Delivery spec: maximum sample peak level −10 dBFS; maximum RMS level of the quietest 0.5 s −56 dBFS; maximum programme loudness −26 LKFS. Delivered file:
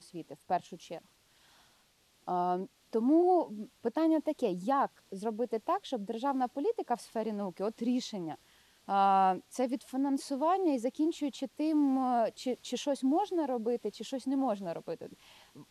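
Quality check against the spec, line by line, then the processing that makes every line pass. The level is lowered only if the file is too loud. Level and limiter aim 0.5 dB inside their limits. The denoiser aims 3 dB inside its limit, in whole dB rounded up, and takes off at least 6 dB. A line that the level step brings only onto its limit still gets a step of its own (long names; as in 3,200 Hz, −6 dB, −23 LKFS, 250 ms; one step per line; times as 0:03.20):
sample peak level −16.0 dBFS: in spec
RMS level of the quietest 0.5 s −68 dBFS: in spec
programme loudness −32.0 LKFS: in spec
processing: no processing needed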